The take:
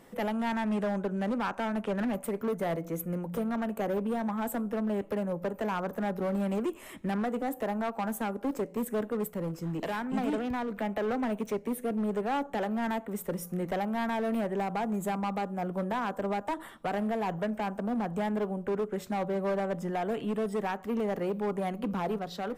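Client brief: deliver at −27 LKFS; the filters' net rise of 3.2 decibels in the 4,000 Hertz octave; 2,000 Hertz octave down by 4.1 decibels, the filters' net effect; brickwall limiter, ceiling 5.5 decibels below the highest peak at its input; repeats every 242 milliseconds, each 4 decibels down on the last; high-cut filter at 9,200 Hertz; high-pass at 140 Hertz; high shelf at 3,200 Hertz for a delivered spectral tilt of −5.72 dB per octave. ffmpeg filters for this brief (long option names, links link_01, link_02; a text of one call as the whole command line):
ffmpeg -i in.wav -af "highpass=140,lowpass=9200,equalizer=frequency=2000:width_type=o:gain=-8,highshelf=frequency=3200:gain=6.5,equalizer=frequency=4000:width_type=o:gain=3,alimiter=level_in=1.5dB:limit=-24dB:level=0:latency=1,volume=-1.5dB,aecho=1:1:242|484|726|968|1210|1452|1694|1936|2178:0.631|0.398|0.25|0.158|0.0994|0.0626|0.0394|0.0249|0.0157,volume=5dB" out.wav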